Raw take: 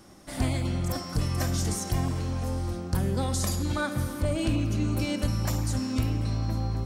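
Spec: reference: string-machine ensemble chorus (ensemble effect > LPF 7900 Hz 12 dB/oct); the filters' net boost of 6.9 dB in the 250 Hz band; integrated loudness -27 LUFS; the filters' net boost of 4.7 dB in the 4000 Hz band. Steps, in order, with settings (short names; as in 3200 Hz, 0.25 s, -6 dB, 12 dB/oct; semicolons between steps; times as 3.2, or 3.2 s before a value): bell 250 Hz +8.5 dB; bell 4000 Hz +6.5 dB; ensemble effect; LPF 7900 Hz 12 dB/oct; gain +1 dB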